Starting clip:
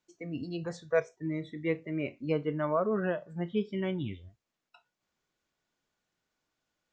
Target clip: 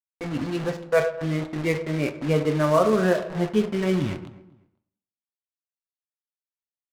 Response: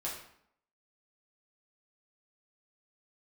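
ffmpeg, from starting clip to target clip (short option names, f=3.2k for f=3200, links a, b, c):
-filter_complex "[0:a]acrusher=bits=6:mix=0:aa=0.000001,aecho=1:1:251|502:0.119|0.0309,asplit=2[a][b];[1:a]atrim=start_sample=2205,highshelf=f=5.6k:g=11.5[c];[b][c]afir=irnorm=-1:irlink=0,volume=-3dB[d];[a][d]amix=inputs=2:normalize=0,adynamicsmooth=sensitivity=8:basefreq=1.3k,volume=5dB"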